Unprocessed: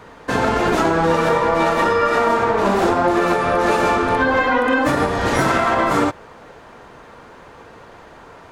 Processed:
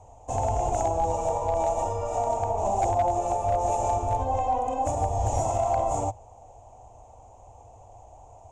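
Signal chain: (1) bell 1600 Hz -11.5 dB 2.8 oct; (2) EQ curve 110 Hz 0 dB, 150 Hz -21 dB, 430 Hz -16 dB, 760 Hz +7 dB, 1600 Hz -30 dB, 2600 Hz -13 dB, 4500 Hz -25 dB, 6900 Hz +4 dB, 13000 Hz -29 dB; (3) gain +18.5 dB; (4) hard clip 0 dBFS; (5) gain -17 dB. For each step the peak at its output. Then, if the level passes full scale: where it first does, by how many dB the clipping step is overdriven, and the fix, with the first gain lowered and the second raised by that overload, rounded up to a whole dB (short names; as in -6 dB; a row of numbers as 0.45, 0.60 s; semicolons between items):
-8.0, -14.0, +4.5, 0.0, -17.0 dBFS; step 3, 4.5 dB; step 3 +13.5 dB, step 5 -12 dB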